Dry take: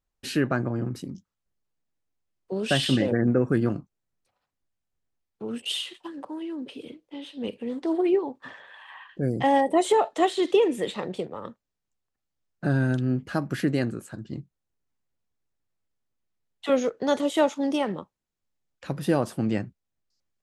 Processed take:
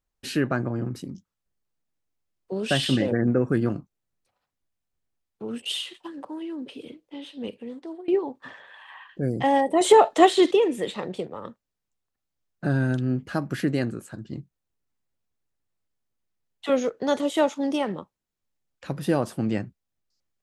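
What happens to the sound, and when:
7.3–8.08 fade out, to -23.5 dB
9.81–10.51 gain +6.5 dB

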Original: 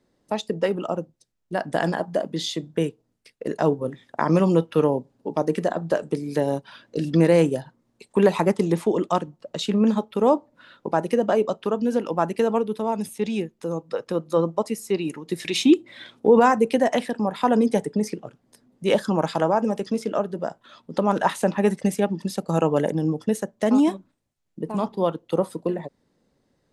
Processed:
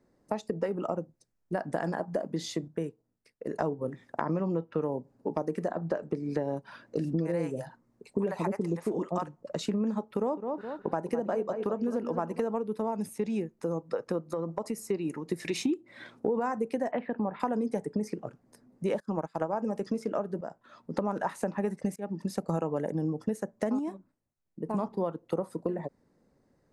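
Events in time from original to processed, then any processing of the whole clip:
2.68–3.54 gain -7 dB
4.21–4.82 air absorption 130 m
5.71–6.57 LPF 4900 Hz
7.13–9.54 bands offset in time lows, highs 50 ms, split 600 Hz
10.08–12.4 dark delay 0.208 s, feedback 30%, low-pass 3800 Hz, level -10 dB
14.29–14.87 compressor, threshold -26 dBFS
16.91–17.4 inverse Chebyshev low-pass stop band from 6000 Hz
19–19.53 upward expander 2.5:1, over -34 dBFS
20.41–20.96 fade in linear, from -12.5 dB
21.96–22.41 fade in, from -21.5 dB
23.79–24.69 gain -6 dB
whole clip: bell 3300 Hz -11.5 dB 0.71 oct; compressor 6:1, threshold -27 dBFS; high shelf 4900 Hz -6 dB

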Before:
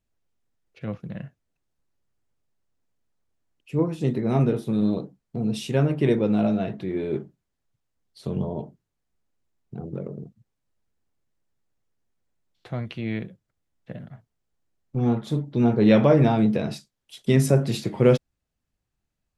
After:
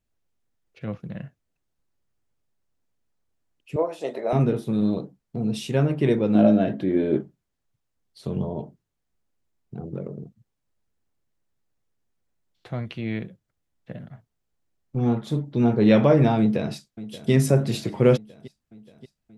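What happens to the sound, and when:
3.76–4.33 resonant high-pass 620 Hz, resonance Q 4.5
6.35–7.21 small resonant body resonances 280/560/1600/3100 Hz, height 11 dB, ringing for 30 ms
16.39–17.31 echo throw 0.58 s, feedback 65%, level -16 dB

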